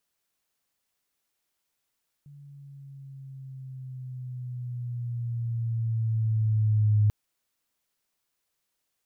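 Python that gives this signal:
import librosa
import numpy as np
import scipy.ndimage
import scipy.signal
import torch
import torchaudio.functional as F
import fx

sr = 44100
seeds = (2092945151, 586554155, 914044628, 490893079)

y = fx.riser_tone(sr, length_s=4.84, level_db=-17.5, wave='sine', hz=144.0, rise_st=-5.5, swell_db=28.0)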